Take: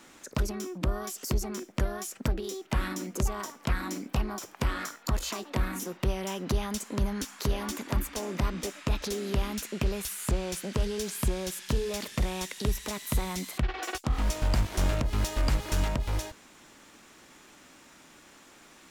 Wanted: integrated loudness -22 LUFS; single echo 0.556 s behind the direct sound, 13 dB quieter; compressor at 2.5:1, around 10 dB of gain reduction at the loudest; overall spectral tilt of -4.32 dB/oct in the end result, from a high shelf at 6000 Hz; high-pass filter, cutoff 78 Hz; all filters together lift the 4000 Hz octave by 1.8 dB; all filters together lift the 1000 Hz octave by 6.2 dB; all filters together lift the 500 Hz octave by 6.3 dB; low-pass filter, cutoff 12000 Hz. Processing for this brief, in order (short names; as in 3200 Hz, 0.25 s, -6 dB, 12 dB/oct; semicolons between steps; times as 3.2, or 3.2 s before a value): HPF 78 Hz; LPF 12000 Hz; bell 500 Hz +7 dB; bell 1000 Hz +5.5 dB; bell 4000 Hz +4 dB; high shelf 6000 Hz -5.5 dB; compressor 2.5:1, threshold -39 dBFS; echo 0.556 s -13 dB; gain +17.5 dB